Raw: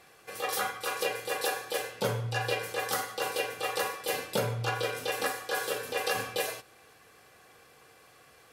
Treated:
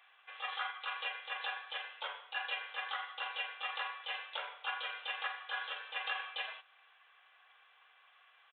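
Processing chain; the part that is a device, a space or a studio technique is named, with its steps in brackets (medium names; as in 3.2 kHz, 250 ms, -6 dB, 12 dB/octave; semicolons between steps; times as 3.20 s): musical greeting card (resampled via 8 kHz; high-pass 850 Hz 24 dB/octave; peaking EQ 3.1 kHz +5 dB 0.3 oct); trim -5 dB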